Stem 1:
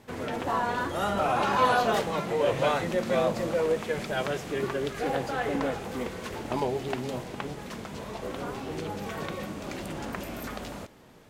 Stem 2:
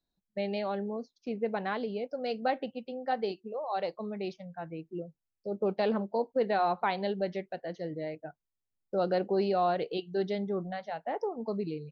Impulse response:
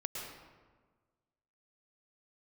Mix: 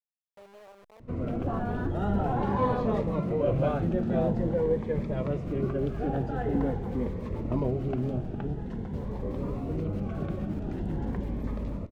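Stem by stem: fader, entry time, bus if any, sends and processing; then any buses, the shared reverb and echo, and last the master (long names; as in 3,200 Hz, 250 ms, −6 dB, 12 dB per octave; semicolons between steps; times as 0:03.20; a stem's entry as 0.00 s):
−3.5 dB, 1.00 s, no send, spectral tilt −4 dB per octave; phaser whose notches keep moving one way rising 0.46 Hz
−14.0 dB, 0.00 s, no send, hold until the input has moved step −29 dBFS; low shelf with overshoot 360 Hz −8.5 dB, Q 1.5; brickwall limiter −27 dBFS, peak gain reduction 11 dB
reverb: not used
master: high-shelf EQ 3,300 Hz −10.5 dB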